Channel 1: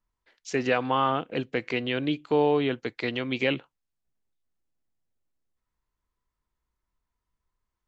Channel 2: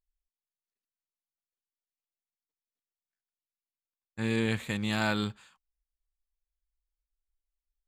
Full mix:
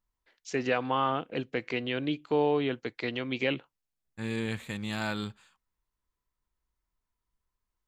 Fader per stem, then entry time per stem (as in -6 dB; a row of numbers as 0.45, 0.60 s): -3.5, -4.0 dB; 0.00, 0.00 s